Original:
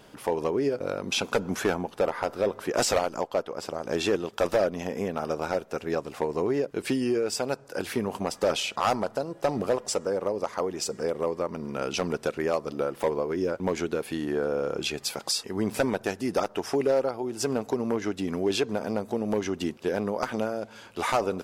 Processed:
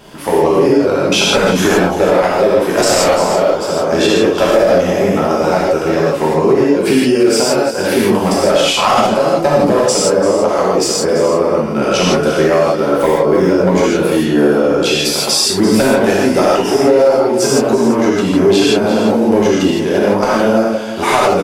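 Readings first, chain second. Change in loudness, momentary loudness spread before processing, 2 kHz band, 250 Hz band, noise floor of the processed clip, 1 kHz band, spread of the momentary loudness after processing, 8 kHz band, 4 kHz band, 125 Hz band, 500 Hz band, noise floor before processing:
+16.5 dB, 5 LU, +16.0 dB, +17.5 dB, -18 dBFS, +16.0 dB, 3 LU, +16.0 dB, +16.5 dB, +16.5 dB, +16.0 dB, -51 dBFS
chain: echo 0.34 s -12.5 dB; non-linear reverb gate 0.19 s flat, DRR -7 dB; maximiser +10 dB; gain -1 dB

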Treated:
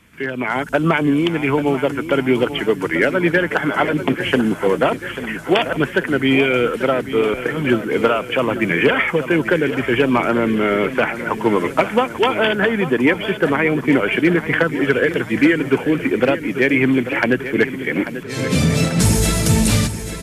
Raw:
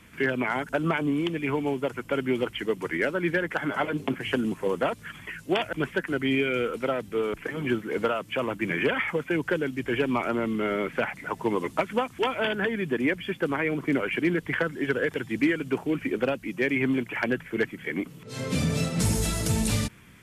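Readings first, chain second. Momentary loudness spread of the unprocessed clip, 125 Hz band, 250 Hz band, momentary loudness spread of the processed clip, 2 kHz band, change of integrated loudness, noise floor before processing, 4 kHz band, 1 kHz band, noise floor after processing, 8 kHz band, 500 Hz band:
5 LU, +10.0 dB, +10.0 dB, 5 LU, +10.0 dB, +10.0 dB, -48 dBFS, +10.0 dB, +10.0 dB, -30 dBFS, n/a, +10.0 dB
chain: AGC gain up to 10 dB; on a send: feedback echo 0.84 s, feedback 57%, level -12 dB

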